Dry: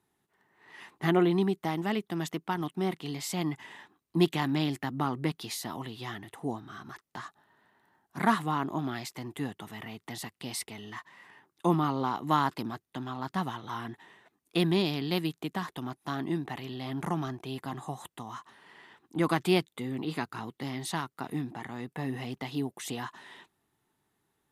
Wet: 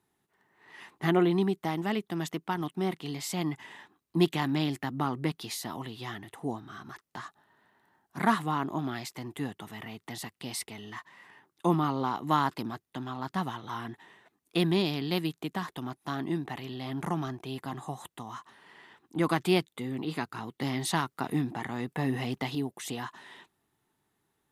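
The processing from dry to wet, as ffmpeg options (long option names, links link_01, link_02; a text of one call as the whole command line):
ffmpeg -i in.wav -filter_complex "[0:a]asplit=3[link_01][link_02][link_03];[link_01]atrim=end=20.602[link_04];[link_02]atrim=start=20.598:end=22.552,asetpts=PTS-STARTPTS,volume=4.5dB[link_05];[link_03]atrim=start=22.548[link_06];[link_04][link_05]acrossfade=duration=0.004:curve1=hsin:curve2=hsin[link_07];[link_07][link_06]acrossfade=duration=0.004:curve1=hsin:curve2=hsin" out.wav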